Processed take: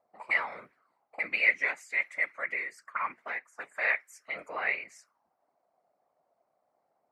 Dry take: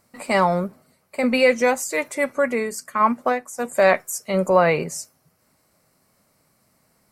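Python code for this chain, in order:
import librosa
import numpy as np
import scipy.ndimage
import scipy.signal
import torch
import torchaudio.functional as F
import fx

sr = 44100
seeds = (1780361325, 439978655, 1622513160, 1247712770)

y = fx.whisperise(x, sr, seeds[0])
y = fx.auto_wah(y, sr, base_hz=690.0, top_hz=2100.0, q=4.4, full_db=-23.0, direction='up')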